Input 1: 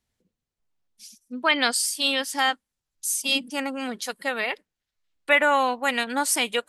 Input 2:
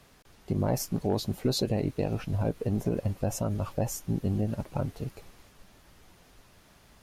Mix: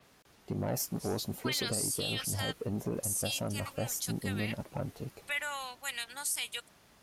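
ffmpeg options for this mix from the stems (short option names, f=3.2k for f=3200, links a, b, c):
-filter_complex "[0:a]aderivative,alimiter=limit=-18.5dB:level=0:latency=1,volume=-2dB[a];[1:a]highpass=f=140:p=1,asoftclip=type=tanh:threshold=-23.5dB,adynamicequalizer=threshold=0.00282:dfrequency=6300:dqfactor=0.7:tfrequency=6300:tqfactor=0.7:attack=5:release=100:ratio=0.375:range=3:mode=boostabove:tftype=highshelf,volume=-2.5dB[b];[a][b]amix=inputs=2:normalize=0,alimiter=limit=-23.5dB:level=0:latency=1:release=18"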